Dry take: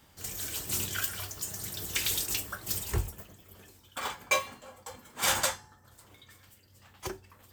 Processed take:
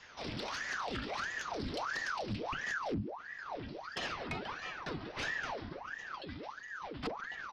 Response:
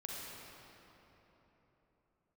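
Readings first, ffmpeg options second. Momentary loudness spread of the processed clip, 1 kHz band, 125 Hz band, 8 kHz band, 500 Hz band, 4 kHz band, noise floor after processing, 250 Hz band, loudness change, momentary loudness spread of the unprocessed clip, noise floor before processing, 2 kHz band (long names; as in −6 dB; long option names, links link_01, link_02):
8 LU, −1.0 dB, −4.5 dB, −20.0 dB, −1.0 dB, −8.0 dB, −49 dBFS, +4.5 dB, −8.0 dB, 18 LU, −61 dBFS, −1.0 dB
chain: -filter_complex "[0:a]acrossover=split=420|1300|2000[link_01][link_02][link_03][link_04];[link_04]aeval=exprs='0.0531*(abs(mod(val(0)/0.0531+3,4)-2)-1)':channel_layout=same[link_05];[link_01][link_02][link_03][link_05]amix=inputs=4:normalize=0,acrossover=split=390[link_06][link_07];[link_07]acompressor=threshold=-37dB:ratio=10[link_08];[link_06][link_08]amix=inputs=2:normalize=0,asplit=4[link_09][link_10][link_11][link_12];[link_10]adelay=140,afreqshift=31,volume=-14dB[link_13];[link_11]adelay=280,afreqshift=62,volume=-23.1dB[link_14];[link_12]adelay=420,afreqshift=93,volume=-32.2dB[link_15];[link_09][link_13][link_14][link_15]amix=inputs=4:normalize=0,asubboost=boost=10.5:cutoff=78,aresample=11025,aresample=44100,acompressor=threshold=-39dB:ratio=8,asoftclip=type=tanh:threshold=-36.5dB,aeval=exprs='val(0)*sin(2*PI*1000*n/s+1000*0.85/1.5*sin(2*PI*1.5*n/s))':channel_layout=same,volume=9dB"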